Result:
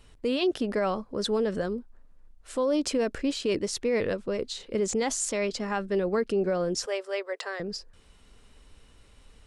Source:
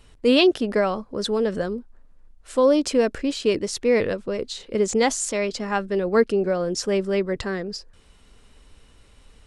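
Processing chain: 6.86–7.60 s: steep high-pass 470 Hz 36 dB/octave; peak limiter -15.5 dBFS, peak gain reduction 11 dB; trim -3 dB

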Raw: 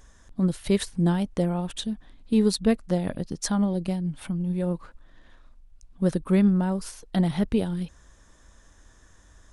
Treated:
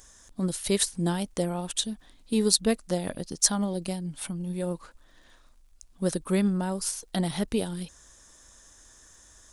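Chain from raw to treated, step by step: tone controls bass -6 dB, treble +12 dB; crackle 89 per s -56 dBFS; trim -1 dB

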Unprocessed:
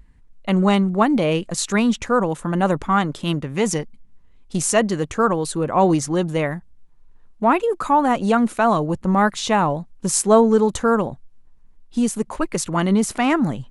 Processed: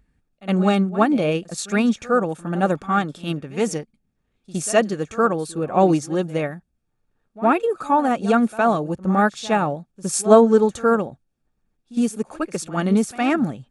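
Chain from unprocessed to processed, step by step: comb of notches 1 kHz; reverse echo 63 ms -14.5 dB; upward expansion 1.5:1, over -27 dBFS; trim +3 dB

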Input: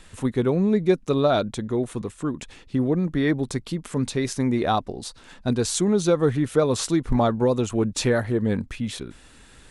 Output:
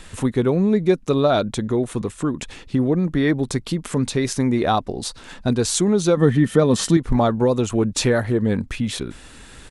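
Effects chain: 6.17–6.97 s: small resonant body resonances 200/1800/3100 Hz, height 13 dB; in parallel at +2.5 dB: compression, threshold -29 dBFS, peak gain reduction 16 dB; on the sum: resampled via 32 kHz

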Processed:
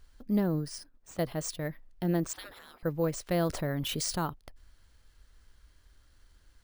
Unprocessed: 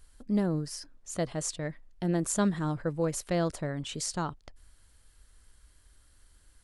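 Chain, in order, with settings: 0.78–1.19 s: valve stage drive 41 dB, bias 0.8; 2.33–2.83 s: spectral gate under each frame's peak -25 dB weak; careless resampling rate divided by 3×, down filtered, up hold; 3.49–4.26 s: level flattener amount 50%

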